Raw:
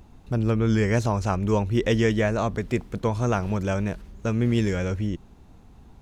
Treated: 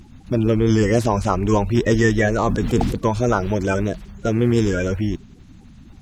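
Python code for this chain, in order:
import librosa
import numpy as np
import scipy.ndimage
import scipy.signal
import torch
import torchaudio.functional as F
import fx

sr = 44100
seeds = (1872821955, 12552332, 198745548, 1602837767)

y = fx.spec_quant(x, sr, step_db=30)
y = fx.sustainer(y, sr, db_per_s=39.0, at=(2.42, 2.94), fade=0.02)
y = y * 10.0 ** (5.5 / 20.0)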